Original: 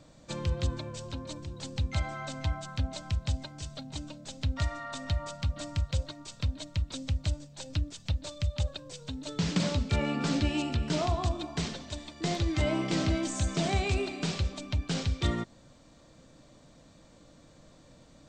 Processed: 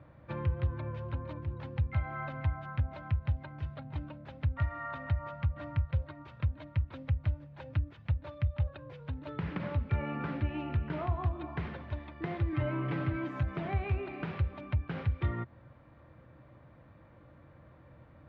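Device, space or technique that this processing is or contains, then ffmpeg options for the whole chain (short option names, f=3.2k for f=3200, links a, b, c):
bass amplifier: -filter_complex "[0:a]asettb=1/sr,asplit=3[a][b][c];[a]atrim=end=12.524[d];[b]atrim=start=12.52:end=13.43,asetpts=PTS-STARTPTS,afade=t=in:d=0.004:c=qsin,afade=t=out:st=0.906:d=0.004:c=qsin,aecho=1:1:7:1,atrim=end_sample=40131[e];[c]atrim=start=13.426[f];[d][e]acrossfade=d=0.004:c1=hsin:c2=qsin[g];[g][f]acrossfade=d=0.004:c1=qsin:c2=hsin,acompressor=threshold=-32dB:ratio=3,highpass=63,equalizer=f=78:t=q:w=4:g=8,equalizer=f=120:t=q:w=4:g=5,equalizer=f=180:t=q:w=4:g=-7,equalizer=f=260:t=q:w=4:g=-8,equalizer=f=440:t=q:w=4:g=-5,equalizer=f=670:t=q:w=4:g=-5,lowpass=f=2.1k:w=0.5412,lowpass=f=2.1k:w=1.3066,volume=2.5dB"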